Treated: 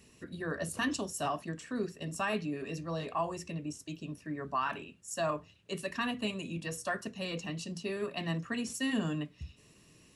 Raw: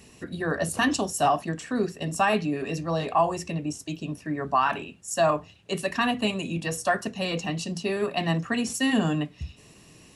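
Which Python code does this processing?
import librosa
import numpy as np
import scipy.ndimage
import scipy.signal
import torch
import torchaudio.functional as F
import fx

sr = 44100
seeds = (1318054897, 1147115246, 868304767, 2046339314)

y = fx.peak_eq(x, sr, hz=770.0, db=-8.0, octaves=0.32)
y = F.gain(torch.from_numpy(y), -8.5).numpy()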